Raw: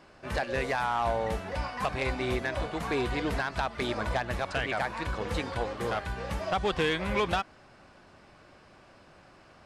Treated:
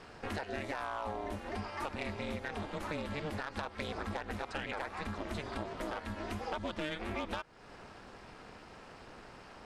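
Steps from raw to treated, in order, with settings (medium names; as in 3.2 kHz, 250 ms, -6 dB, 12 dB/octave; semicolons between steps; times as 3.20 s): ring modulator 150 Hz; compression 4:1, threshold -44 dBFS, peak gain reduction 15.5 dB; trim +6.5 dB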